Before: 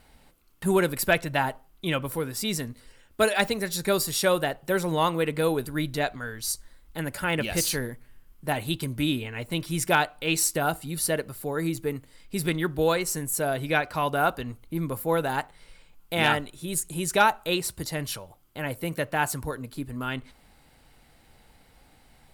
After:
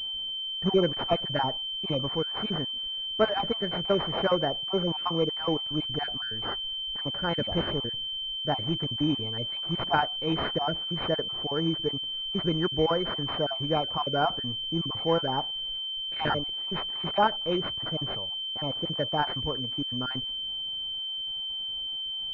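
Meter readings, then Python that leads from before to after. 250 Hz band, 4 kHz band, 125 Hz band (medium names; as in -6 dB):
-1.5 dB, +8.5 dB, -2.0 dB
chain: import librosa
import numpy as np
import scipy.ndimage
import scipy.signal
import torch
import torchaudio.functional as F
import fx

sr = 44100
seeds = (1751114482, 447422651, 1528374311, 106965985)

y = fx.spec_dropout(x, sr, seeds[0], share_pct=33)
y = fx.pwm(y, sr, carrier_hz=3100.0)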